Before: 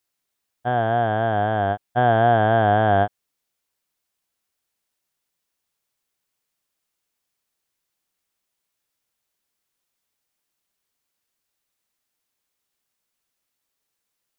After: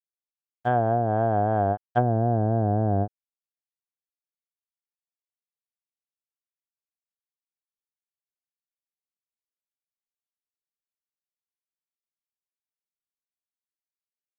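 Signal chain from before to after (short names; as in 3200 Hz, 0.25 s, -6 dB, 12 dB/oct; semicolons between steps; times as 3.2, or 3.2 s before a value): crossover distortion -52 dBFS; treble ducked by the level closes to 390 Hz, closed at -15 dBFS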